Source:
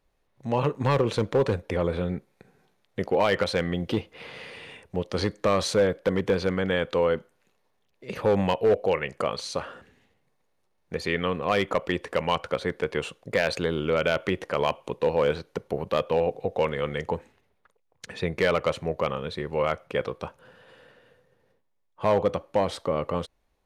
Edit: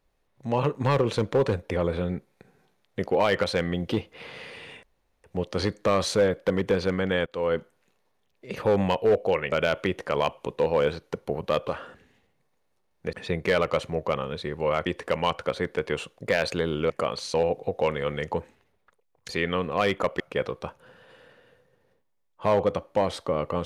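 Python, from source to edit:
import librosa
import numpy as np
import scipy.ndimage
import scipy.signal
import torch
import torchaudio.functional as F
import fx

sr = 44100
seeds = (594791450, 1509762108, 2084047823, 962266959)

y = fx.edit(x, sr, fx.insert_room_tone(at_s=4.83, length_s=0.41),
    fx.fade_in_from(start_s=6.85, length_s=0.29, floor_db=-21.5),
    fx.swap(start_s=9.11, length_s=0.44, other_s=13.95, other_length_s=2.16),
    fx.swap(start_s=11.0, length_s=0.91, other_s=18.06, other_length_s=1.73), tone=tone)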